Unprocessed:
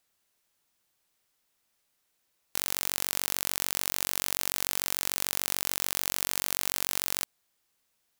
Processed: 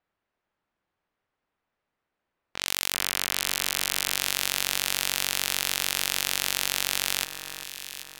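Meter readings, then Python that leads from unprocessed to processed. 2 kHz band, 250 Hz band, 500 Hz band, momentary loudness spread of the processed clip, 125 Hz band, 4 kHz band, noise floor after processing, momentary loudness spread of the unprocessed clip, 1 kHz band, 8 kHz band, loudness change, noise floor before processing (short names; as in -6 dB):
+7.5 dB, +1.5 dB, +2.5 dB, 9 LU, +3.0 dB, +8.0 dB, -85 dBFS, 2 LU, +4.0 dB, +3.5 dB, +3.0 dB, -76 dBFS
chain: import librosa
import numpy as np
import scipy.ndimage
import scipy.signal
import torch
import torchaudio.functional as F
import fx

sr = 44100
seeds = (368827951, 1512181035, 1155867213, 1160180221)

y = fx.env_lowpass(x, sr, base_hz=1700.0, full_db=-40.0)
y = fx.dynamic_eq(y, sr, hz=3000.0, q=0.83, threshold_db=-52.0, ratio=4.0, max_db=8)
y = fx.echo_alternate(y, sr, ms=392, hz=1900.0, feedback_pct=67, wet_db=-8.0)
y = y * librosa.db_to_amplitude(1.5)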